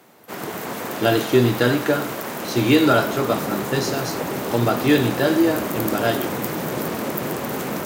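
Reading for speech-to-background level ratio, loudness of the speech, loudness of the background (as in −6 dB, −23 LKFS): 6.0 dB, −20.5 LKFS, −26.5 LKFS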